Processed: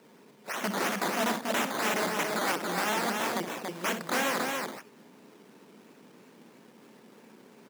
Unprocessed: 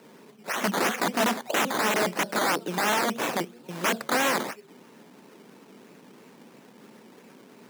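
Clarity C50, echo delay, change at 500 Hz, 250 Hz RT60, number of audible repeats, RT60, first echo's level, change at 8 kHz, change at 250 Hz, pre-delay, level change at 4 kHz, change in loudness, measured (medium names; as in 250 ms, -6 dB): no reverb, 62 ms, -3.5 dB, no reverb, 2, no reverb, -10.5 dB, -3.5 dB, -3.5 dB, no reverb, -3.5 dB, -4.0 dB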